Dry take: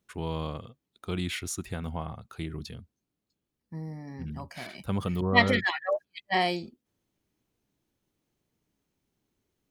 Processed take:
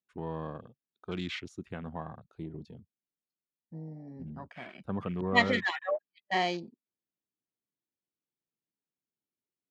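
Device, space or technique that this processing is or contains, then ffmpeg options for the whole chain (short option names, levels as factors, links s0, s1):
over-cleaned archive recording: -af "highpass=140,lowpass=6200,afwtdn=0.00708,volume=0.708"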